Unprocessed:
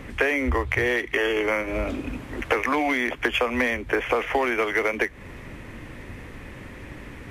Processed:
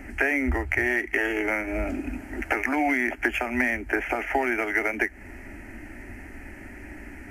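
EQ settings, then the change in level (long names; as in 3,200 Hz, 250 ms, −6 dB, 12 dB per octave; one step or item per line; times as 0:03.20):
phaser with its sweep stopped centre 730 Hz, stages 8
+1.0 dB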